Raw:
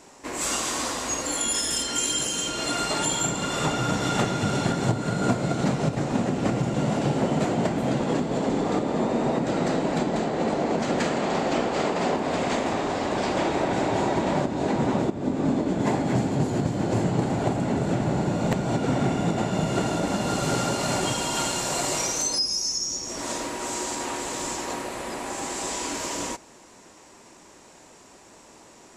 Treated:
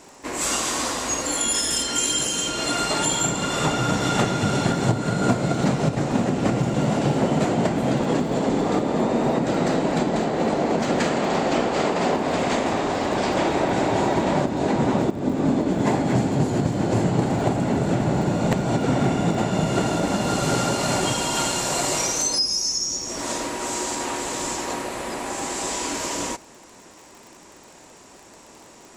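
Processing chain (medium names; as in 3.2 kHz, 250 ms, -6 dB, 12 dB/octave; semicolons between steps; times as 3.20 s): crackle 43 per s -39 dBFS; trim +3 dB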